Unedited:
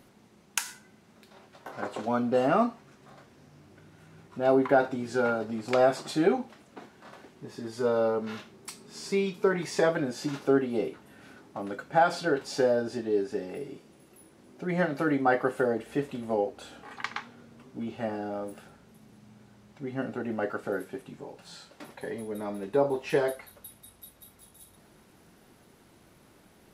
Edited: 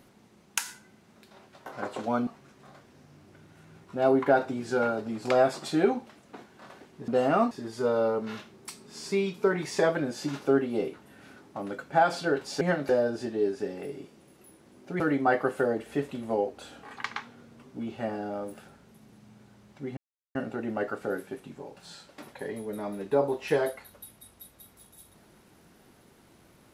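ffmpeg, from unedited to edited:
-filter_complex "[0:a]asplit=8[a][b][c][d][e][f][g][h];[a]atrim=end=2.272[i];[b]atrim=start=2.698:end=7.512[j];[c]atrim=start=2.268:end=2.702[k];[d]atrim=start=7.508:end=12.612[l];[e]atrim=start=14.718:end=15.002[m];[f]atrim=start=12.608:end=14.722[n];[g]atrim=start=14.998:end=19.97,asetpts=PTS-STARTPTS,afade=t=out:st=4.968:d=0.004:c=hsin,apad=pad_dur=0.38[o];[h]atrim=start=19.97,asetpts=PTS-STARTPTS,afade=t=in:d=0.004:c=hsin[p];[i][j]acrossfade=d=0.004:c1=hsin:c2=hsin[q];[q][k]acrossfade=d=0.004:c1=hsin:c2=hsin[r];[r][l]acrossfade=d=0.004:c1=hsin:c2=hsin[s];[s][m]acrossfade=d=0.004:c1=hsin:c2=hsin[t];[t][n]acrossfade=d=0.004:c1=hsin:c2=hsin[u];[o][p]concat=n=2:v=0:a=1[v];[u][v]acrossfade=d=0.004:c1=hsin:c2=hsin"

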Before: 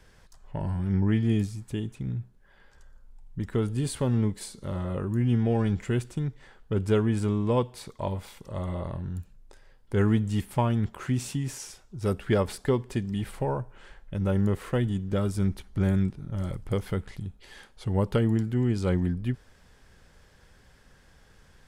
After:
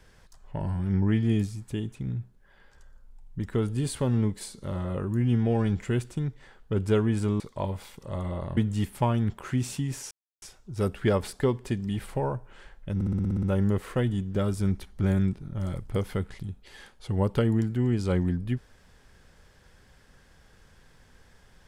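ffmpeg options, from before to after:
-filter_complex "[0:a]asplit=12[a][b][c][d][e][f][g][h][i][j][k][l];[a]atrim=end=7.402[m];[b]atrim=start=7.828:end=9.002[n];[c]atrim=start=10.128:end=11.67,asetpts=PTS-STARTPTS,afade=t=out:st=1.538:d=0.004:c=hsin,apad=pad_dur=0.31[o];[d]atrim=start=11.67:end=14.262,asetpts=PTS-STARTPTS,afade=t=in:d=0.004:c=hsin[p];[e]atrim=start=14.198:end=14.262[q];[f]atrim=start=14.198:end=14.262[r];[g]atrim=start=14.198:end=14.262[s];[h]atrim=start=14.198:end=14.262[t];[i]atrim=start=14.198:end=14.262[u];[j]atrim=start=14.198:end=14.262[v];[k]atrim=start=14.198:end=14.262[w];[l]atrim=start=14.198[x];[m][n]acrossfade=d=0.004:c1=hsin:c2=hsin[y];[o][p]concat=n=2:v=0:a=1[z];[y][z]acrossfade=d=0.004:c1=hsin:c2=hsin[aa];[aa][q]acrossfade=d=0.004:c1=hsin:c2=hsin[ab];[ab][r]acrossfade=d=0.004:c1=hsin:c2=hsin[ac];[ac][s]acrossfade=d=0.004:c1=hsin:c2=hsin[ad];[ad][t]acrossfade=d=0.004:c1=hsin:c2=hsin[ae];[ae][u]acrossfade=d=0.004:c1=hsin:c2=hsin[af];[af][v]acrossfade=d=0.004:c1=hsin:c2=hsin[ag];[ag][w]acrossfade=d=0.004:c1=hsin:c2=hsin[ah];[ah][x]acrossfade=d=0.004:c1=hsin:c2=hsin"

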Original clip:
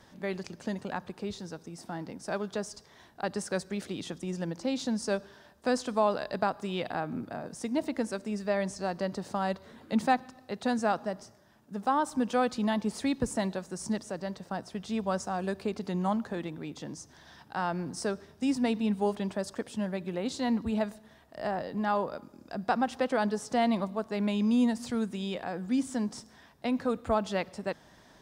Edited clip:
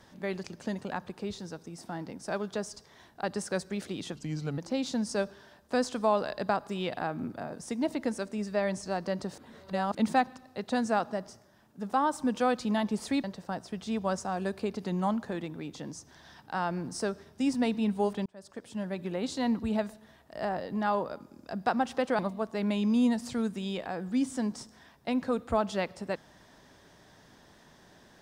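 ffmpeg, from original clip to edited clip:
-filter_complex "[0:a]asplit=8[a][b][c][d][e][f][g][h];[a]atrim=end=4.154[i];[b]atrim=start=4.15:end=4.51,asetpts=PTS-STARTPTS,asetrate=37044,aresample=44100[j];[c]atrim=start=4.506:end=9.312[k];[d]atrim=start=9.308:end=9.882,asetpts=PTS-STARTPTS,areverse[l];[e]atrim=start=9.878:end=13.172[m];[f]atrim=start=14.258:end=19.28,asetpts=PTS-STARTPTS,afade=t=out:st=5.018:d=0.004:c=hsin[n];[g]atrim=start=19.28:end=23.212,asetpts=PTS-STARTPTS,afade=t=in:d=0.75[o];[h]atrim=start=23.758[p];[i][j]acrossfade=d=0.004:c1=hsin:c2=hsin[q];[q][k]acrossfade=d=0.004:c1=hsin:c2=hsin[r];[r][l]acrossfade=d=0.004:c1=hsin:c2=hsin[s];[s][m]acrossfade=d=0.004:c1=hsin:c2=hsin[t];[n][o]concat=n=2:v=0:a=1[u];[t][u]acrossfade=d=0.004:c1=hsin:c2=hsin[v];[v][p]acrossfade=d=0.004:c1=hsin:c2=hsin"

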